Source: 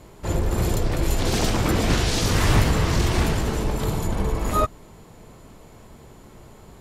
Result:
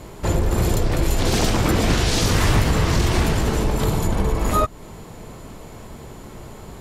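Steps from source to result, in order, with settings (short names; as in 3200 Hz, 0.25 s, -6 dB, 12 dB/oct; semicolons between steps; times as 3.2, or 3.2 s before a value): compressor 2:1, threshold -27 dBFS, peak gain reduction 8 dB; gain +8 dB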